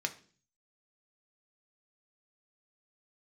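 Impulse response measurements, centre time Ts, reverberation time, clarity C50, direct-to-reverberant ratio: 7 ms, 0.45 s, 15.5 dB, 4.5 dB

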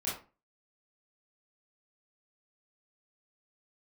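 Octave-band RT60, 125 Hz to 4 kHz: 0.40, 0.40, 0.35, 0.35, 0.30, 0.25 s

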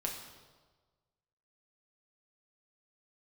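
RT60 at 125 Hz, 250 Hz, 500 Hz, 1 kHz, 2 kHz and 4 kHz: 1.6, 1.3, 1.5, 1.3, 1.1, 1.1 s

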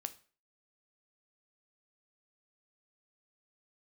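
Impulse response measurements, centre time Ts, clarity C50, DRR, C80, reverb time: 4 ms, 16.5 dB, 10.0 dB, 22.0 dB, 0.40 s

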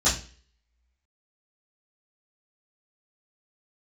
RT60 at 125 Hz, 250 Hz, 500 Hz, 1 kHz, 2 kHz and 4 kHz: 0.45, 0.45, 0.40, 0.35, 0.45, 0.45 s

